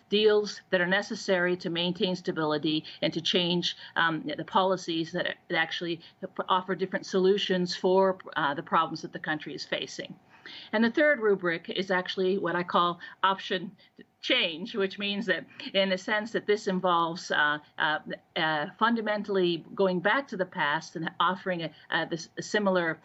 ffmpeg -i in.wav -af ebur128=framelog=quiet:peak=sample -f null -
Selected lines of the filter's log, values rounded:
Integrated loudness:
  I:         -28.0 LUFS
  Threshold: -38.2 LUFS
Loudness range:
  LRA:         1.7 LU
  Threshold: -48.2 LUFS
  LRA low:   -29.1 LUFS
  LRA high:  -27.5 LUFS
Sample peak:
  Peak:      -10.0 dBFS